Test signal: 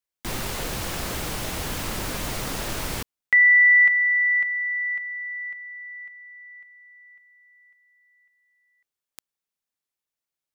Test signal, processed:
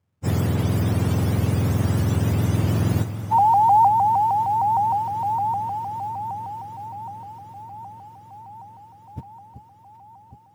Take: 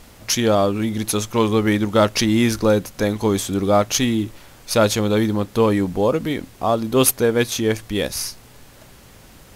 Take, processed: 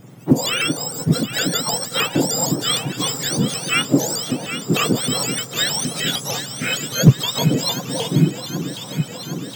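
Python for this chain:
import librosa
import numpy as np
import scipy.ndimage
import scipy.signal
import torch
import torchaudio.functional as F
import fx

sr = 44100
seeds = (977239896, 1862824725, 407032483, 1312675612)

p1 = fx.octave_mirror(x, sr, pivot_hz=1300.0)
p2 = p1 + fx.echo_alternate(p1, sr, ms=383, hz=1100.0, feedback_pct=83, wet_db=-10.0, dry=0)
p3 = fx.quant_companded(p2, sr, bits=8)
p4 = fx.notch(p3, sr, hz=4200.0, q=14.0)
p5 = fx.rider(p4, sr, range_db=4, speed_s=0.5)
p6 = p4 + F.gain(torch.from_numpy(p5), -1.0).numpy()
p7 = fx.vibrato_shape(p6, sr, shape='saw_up', rate_hz=6.5, depth_cents=160.0)
y = F.gain(torch.from_numpy(p7), -5.5).numpy()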